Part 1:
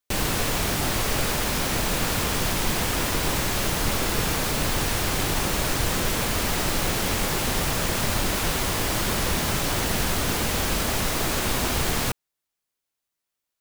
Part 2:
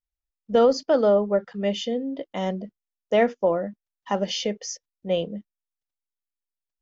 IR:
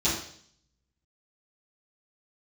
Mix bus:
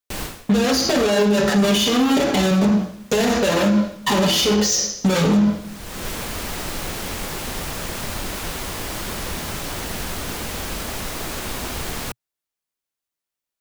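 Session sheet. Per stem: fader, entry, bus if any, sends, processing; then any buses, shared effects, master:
−3.5 dB, 0.00 s, no send, automatic ducking −22 dB, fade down 0.25 s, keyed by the second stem
−3.0 dB, 0.00 s, send −8 dB, comb filter 7 ms, depth 33%; speech leveller within 5 dB; fuzz pedal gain 48 dB, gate −47 dBFS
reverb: on, RT60 0.60 s, pre-delay 3 ms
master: parametric band 120 Hz −4 dB 0.37 octaves; brickwall limiter −10 dBFS, peak gain reduction 11.5 dB

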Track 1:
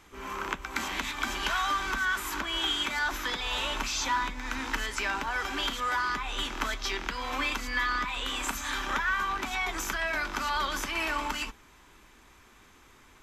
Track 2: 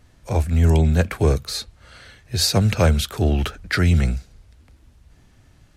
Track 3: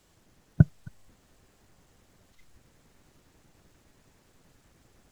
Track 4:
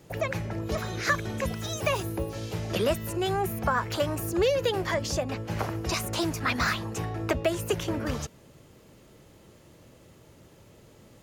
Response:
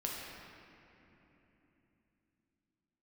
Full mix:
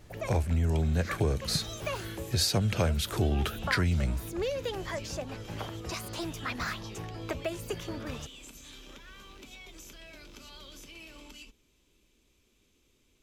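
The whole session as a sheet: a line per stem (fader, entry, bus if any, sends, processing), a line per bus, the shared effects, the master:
−10.0 dB, 0.00 s, no send, flat-topped bell 1,200 Hz −15 dB; downward compressor, threshold −35 dBFS, peak gain reduction 9 dB
−1.5 dB, 0.00 s, no send, no processing
−14.0 dB, 0.95 s, no send, no processing
−8.0 dB, 0.00 s, no send, no processing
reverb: not used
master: downward compressor 6 to 1, threshold −24 dBFS, peak gain reduction 11 dB

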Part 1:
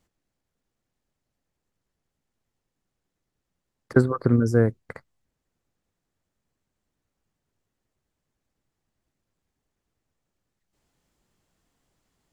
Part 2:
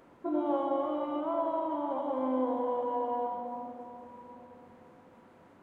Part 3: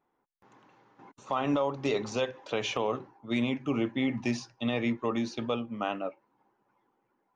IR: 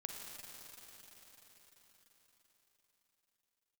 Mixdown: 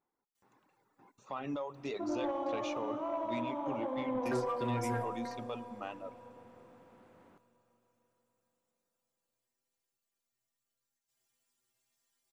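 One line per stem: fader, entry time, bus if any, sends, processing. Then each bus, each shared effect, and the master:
−1.0 dB, 0.35 s, send −12 dB, gain on one half-wave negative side −3 dB; spectral tilt +3.5 dB per octave; stiff-string resonator 120 Hz, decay 0.37 s, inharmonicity 0.008
−6.0 dB, 1.75 s, send −9 dB, no processing
−10.5 dB, 0.00 s, send −12.5 dB, notch filter 3,100 Hz, Q 10; reverb reduction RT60 0.95 s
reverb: on, RT60 5.1 s, pre-delay 38 ms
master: soft clipping −25.5 dBFS, distortion −19 dB

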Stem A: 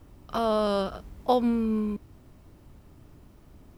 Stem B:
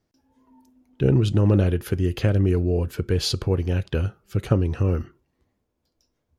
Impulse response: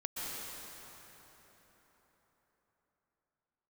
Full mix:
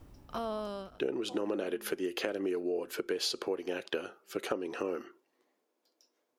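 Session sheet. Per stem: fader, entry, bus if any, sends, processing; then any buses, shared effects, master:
−2.0 dB, 0.00 s, no send, automatic ducking −23 dB, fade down 1.40 s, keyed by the second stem
+1.0 dB, 0.00 s, no send, high-pass filter 320 Hz 24 dB per octave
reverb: not used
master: downward compressor 6 to 1, threshold −30 dBFS, peak gain reduction 12.5 dB

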